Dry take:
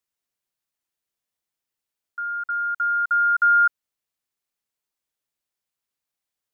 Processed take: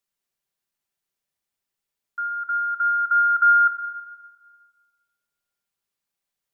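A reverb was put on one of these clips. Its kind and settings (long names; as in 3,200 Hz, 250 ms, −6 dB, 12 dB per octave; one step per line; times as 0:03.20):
rectangular room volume 2,600 cubic metres, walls mixed, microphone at 1.2 metres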